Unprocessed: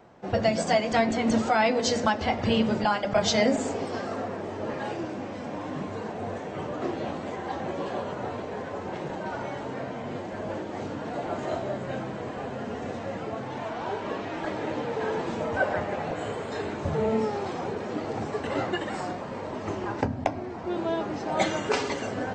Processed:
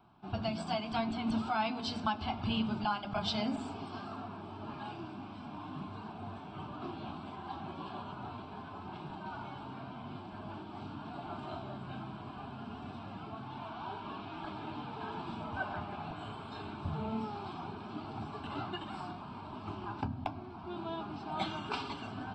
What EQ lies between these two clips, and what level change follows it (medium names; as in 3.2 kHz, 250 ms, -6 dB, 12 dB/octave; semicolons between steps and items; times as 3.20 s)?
static phaser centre 1.9 kHz, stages 6; -6.0 dB